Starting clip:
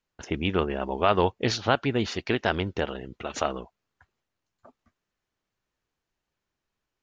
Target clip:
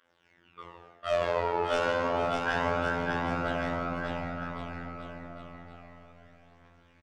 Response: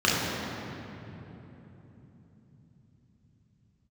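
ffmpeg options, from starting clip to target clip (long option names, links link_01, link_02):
-filter_complex "[0:a]aeval=exprs='val(0)+0.5*0.0708*sgn(val(0))':channel_layout=same,acrossover=split=490 3100:gain=0.112 1 0.141[link_01][link_02][link_03];[link_01][link_02][link_03]amix=inputs=3:normalize=0,agate=range=-44dB:threshold=-21dB:ratio=16:detection=peak,aeval=exprs='(tanh(20*val(0)+0.4)-tanh(0.4))/20':channel_layout=same[link_04];[1:a]atrim=start_sample=2205,asetrate=52920,aresample=44100[link_05];[link_04][link_05]afir=irnorm=-1:irlink=0,aphaser=in_gain=1:out_gain=1:delay=2.4:decay=0.6:speed=0.3:type=triangular,areverse,acompressor=threshold=-23dB:ratio=8,areverse,afftfilt=real='hypot(re,im)*cos(PI*b)':imag='0':win_size=2048:overlap=0.75,aecho=1:1:600|1110|1544|1912|2225:0.631|0.398|0.251|0.158|0.1"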